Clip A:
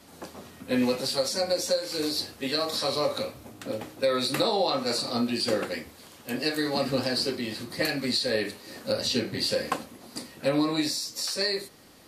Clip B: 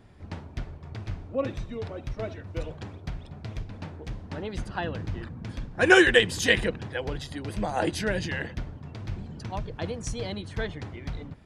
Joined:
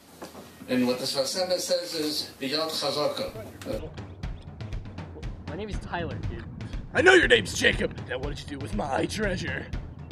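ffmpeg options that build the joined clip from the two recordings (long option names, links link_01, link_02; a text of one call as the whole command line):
ffmpeg -i cue0.wav -i cue1.wav -filter_complex "[1:a]asplit=2[link_01][link_02];[0:a]apad=whole_dur=10.11,atrim=end=10.11,atrim=end=3.792[link_03];[link_02]atrim=start=2.628:end=8.95[link_04];[link_01]atrim=start=2.12:end=2.63,asetpts=PTS-STARTPTS,volume=-7dB,afade=type=in:duration=0.004:curve=hsin,afade=type=out:start_time=0.506:duration=0.004:curve=hsin,adelay=3280[link_05];[link_03][link_04]acrossfade=duration=0.004:curve1=hsin:curve2=hsin[link_06];[link_06][link_05]amix=inputs=2:normalize=0" out.wav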